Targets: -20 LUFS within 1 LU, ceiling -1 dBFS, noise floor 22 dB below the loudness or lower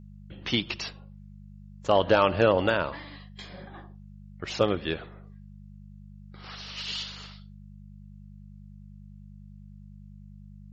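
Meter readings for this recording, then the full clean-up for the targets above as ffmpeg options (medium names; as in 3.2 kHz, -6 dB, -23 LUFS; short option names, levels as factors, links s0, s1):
hum 50 Hz; highest harmonic 200 Hz; hum level -44 dBFS; loudness -27.0 LUFS; peak level -9.5 dBFS; loudness target -20.0 LUFS
-> -af "bandreject=f=50:t=h:w=4,bandreject=f=100:t=h:w=4,bandreject=f=150:t=h:w=4,bandreject=f=200:t=h:w=4"
-af "volume=2.24"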